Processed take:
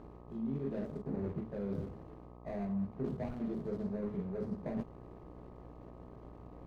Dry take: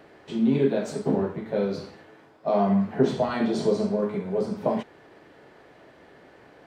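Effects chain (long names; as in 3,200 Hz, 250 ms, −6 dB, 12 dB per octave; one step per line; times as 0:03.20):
running median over 41 samples
low-shelf EQ 110 Hz +9 dB
reversed playback
downward compressor 6 to 1, threshold −34 dBFS, peak gain reduction 18 dB
reversed playback
spectral tilt −2 dB per octave
hum with harmonics 60 Hz, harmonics 21, −48 dBFS −4 dB per octave
level −5.5 dB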